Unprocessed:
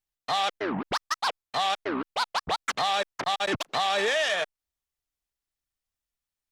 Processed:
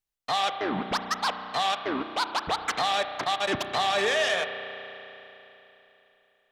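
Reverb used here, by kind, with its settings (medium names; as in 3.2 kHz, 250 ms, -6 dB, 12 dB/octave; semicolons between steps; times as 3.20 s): spring tank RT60 3.4 s, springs 33 ms, chirp 50 ms, DRR 7.5 dB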